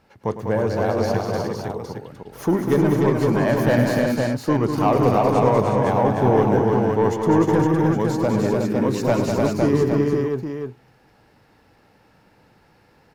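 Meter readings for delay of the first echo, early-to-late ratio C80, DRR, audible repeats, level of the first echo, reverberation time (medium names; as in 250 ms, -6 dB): 105 ms, no reverb, no reverb, 6, -12.0 dB, no reverb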